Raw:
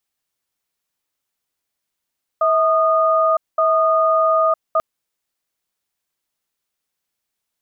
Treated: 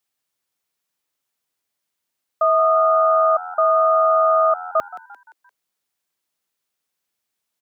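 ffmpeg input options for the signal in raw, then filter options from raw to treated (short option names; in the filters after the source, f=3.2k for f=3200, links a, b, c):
-f lavfi -i "aevalsrc='0.168*(sin(2*PI*645*t)+sin(2*PI*1230*t))*clip(min(mod(t,1.17),0.96-mod(t,1.17))/0.005,0,1)':d=2.39:s=44100"
-filter_complex "[0:a]highpass=44,lowshelf=f=67:g=-9,asplit=5[a][b][c][d][e];[b]adelay=173,afreqshift=85,volume=-16.5dB[f];[c]adelay=346,afreqshift=170,volume=-23.2dB[g];[d]adelay=519,afreqshift=255,volume=-30dB[h];[e]adelay=692,afreqshift=340,volume=-36.7dB[i];[a][f][g][h][i]amix=inputs=5:normalize=0"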